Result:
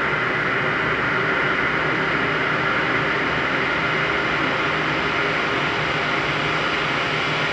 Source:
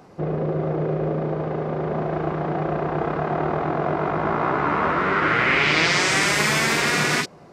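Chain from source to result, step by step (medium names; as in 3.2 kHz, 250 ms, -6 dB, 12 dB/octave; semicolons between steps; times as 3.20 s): random holes in the spectrogram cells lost 25%; echo whose repeats swap between lows and highs 268 ms, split 1.5 kHz, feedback 56%, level -3.5 dB; Paulstretch 36×, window 0.50 s, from 5.41 s; trim -1.5 dB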